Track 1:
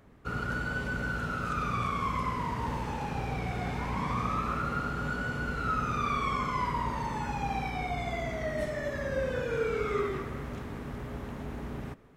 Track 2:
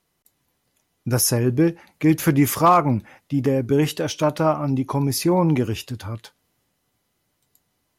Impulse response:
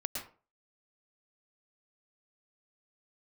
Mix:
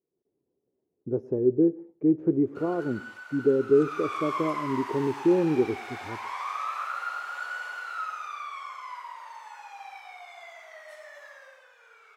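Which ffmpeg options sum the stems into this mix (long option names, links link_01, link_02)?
-filter_complex "[0:a]highpass=frequency=750:width=0.5412,highpass=frequency=750:width=1.3066,adelay=2300,volume=-2.5dB,afade=type=in:start_time=3.67:duration=0.57:silence=0.354813,afade=type=out:start_time=7.67:duration=0.77:silence=0.375837,afade=type=out:start_time=11.25:duration=0.42:silence=0.354813,asplit=2[link_01][link_02];[link_02]volume=-5.5dB[link_03];[1:a]dynaudnorm=framelen=100:gausssize=3:maxgain=7dB,lowpass=frequency=400:width_type=q:width=4.9,volume=-15dB,asplit=2[link_04][link_05];[link_05]volume=-20dB[link_06];[2:a]atrim=start_sample=2205[link_07];[link_03][link_06]amix=inputs=2:normalize=0[link_08];[link_08][link_07]afir=irnorm=-1:irlink=0[link_09];[link_01][link_04][link_09]amix=inputs=3:normalize=0,highpass=frequency=260:poles=1"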